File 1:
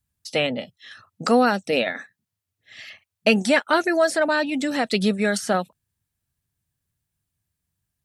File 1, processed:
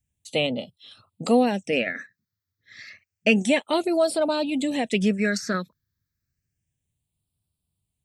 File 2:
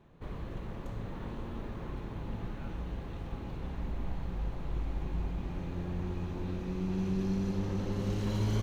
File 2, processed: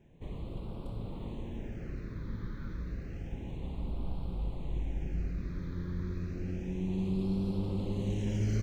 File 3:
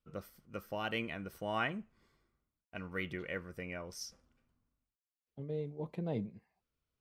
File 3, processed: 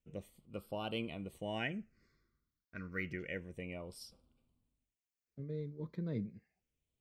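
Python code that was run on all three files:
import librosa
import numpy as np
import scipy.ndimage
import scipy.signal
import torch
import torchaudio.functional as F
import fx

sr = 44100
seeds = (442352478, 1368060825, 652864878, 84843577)

y = fx.phaser_stages(x, sr, stages=6, low_hz=740.0, high_hz=1800.0, hz=0.3, feedback_pct=5)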